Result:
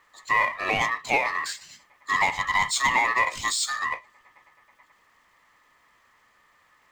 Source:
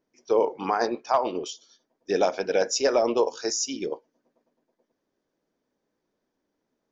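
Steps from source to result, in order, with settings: power-law curve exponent 0.7; ring modulator 1500 Hz

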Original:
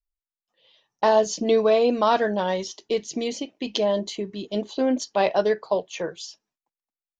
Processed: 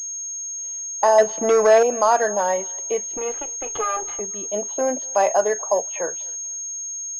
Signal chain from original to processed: 3.17–4.2 minimum comb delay 2.4 ms; bell 690 Hz +3 dB 0.99 oct; 1.18–1.83 sample leveller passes 2; in parallel at +2 dB: limiter -14 dBFS, peak gain reduction 8 dB; on the sum: three-band isolator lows -15 dB, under 480 Hz, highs -15 dB, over 2500 Hz; bit-crush 10-bit; on a send: thinning echo 0.245 s, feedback 39%, high-pass 540 Hz, level -23.5 dB; on the sum: pulse-width modulation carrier 6500 Hz; gain -2 dB

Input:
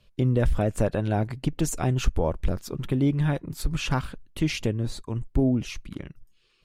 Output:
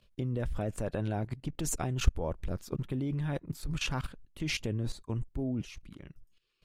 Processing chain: level quantiser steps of 16 dB

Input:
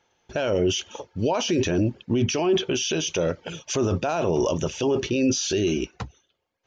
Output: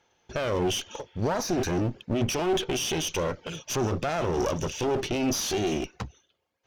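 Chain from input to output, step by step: spectral repair 1.08–1.67, 1400–3600 Hz both; one-sided clip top -33.5 dBFS

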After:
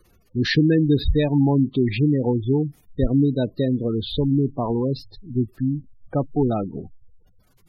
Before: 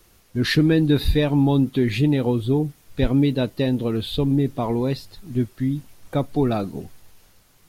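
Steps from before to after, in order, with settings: spectral gate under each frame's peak -20 dB strong

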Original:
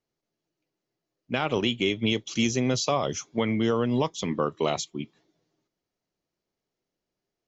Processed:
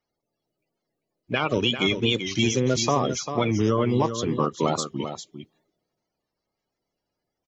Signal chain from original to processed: bin magnitudes rounded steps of 30 dB; echo 0.395 s -9 dB; record warp 45 rpm, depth 100 cents; gain +3 dB

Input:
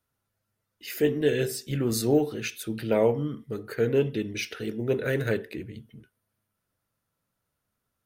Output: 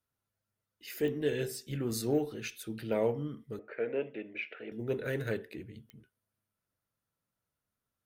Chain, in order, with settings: added harmonics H 8 -39 dB, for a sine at -10.5 dBFS; 3.59–4.72 speaker cabinet 340–2500 Hz, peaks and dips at 410 Hz -3 dB, 600 Hz +9 dB, 1100 Hz -4 dB, 2400 Hz +7 dB; pops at 1.08/5.9, -22 dBFS; gain -7.5 dB

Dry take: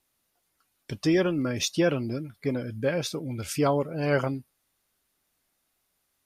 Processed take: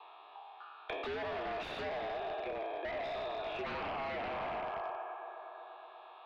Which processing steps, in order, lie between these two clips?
spectral trails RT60 1.67 s; mistuned SSB +86 Hz 400–3500 Hz; bell 620 Hz +10.5 dB 1.2 oct; notch 1400 Hz, Q 14; analogue delay 0.12 s, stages 2048, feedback 73%, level -19 dB; compressor 3:1, threshold -31 dBFS, peak gain reduction 15.5 dB; fixed phaser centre 2000 Hz, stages 6; notch comb 1500 Hz; wavefolder -39.5 dBFS; air absorption 330 m; three-band squash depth 70%; gain +7.5 dB

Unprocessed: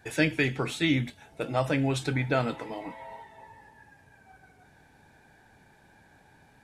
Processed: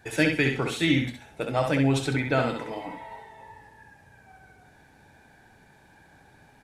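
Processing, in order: feedback echo 66 ms, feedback 25%, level -5 dB; gain +1.5 dB

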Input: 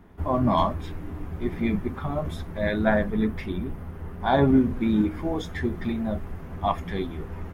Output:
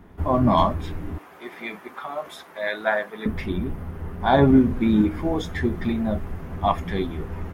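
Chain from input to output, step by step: 1.18–3.26 HPF 690 Hz 12 dB/oct; gain +3.5 dB

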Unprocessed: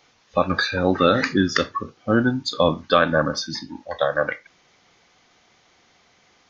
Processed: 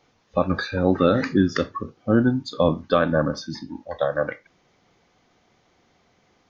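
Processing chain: tilt shelf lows +5.5 dB, about 910 Hz; gain -3.5 dB

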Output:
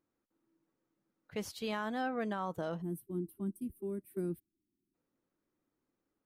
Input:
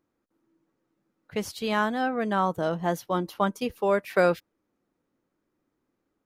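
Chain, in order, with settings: spectral gain 2.82–4.94, 400–8000 Hz -27 dB; limiter -20 dBFS, peak gain reduction 7 dB; gain -7.5 dB

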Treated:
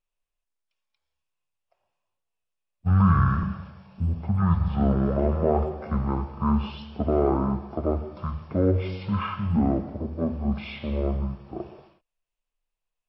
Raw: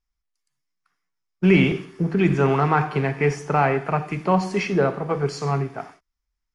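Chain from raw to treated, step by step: speed mistake 15 ips tape played at 7.5 ips; gain -3.5 dB

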